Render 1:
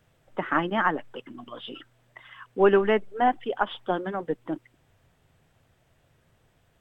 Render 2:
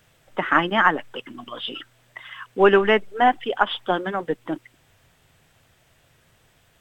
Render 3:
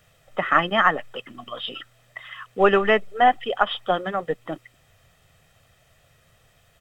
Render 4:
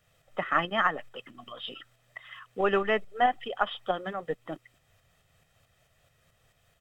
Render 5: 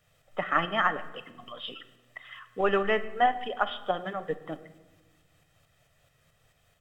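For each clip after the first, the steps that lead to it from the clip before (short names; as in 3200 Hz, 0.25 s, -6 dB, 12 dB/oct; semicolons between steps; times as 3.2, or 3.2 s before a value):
tilt shelf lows -4.5 dB, about 1300 Hz; gain +7 dB
comb 1.6 ms, depth 49%; gain -1 dB
tremolo saw up 4.6 Hz, depth 45%; gain -5.5 dB
shoebox room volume 830 m³, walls mixed, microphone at 0.4 m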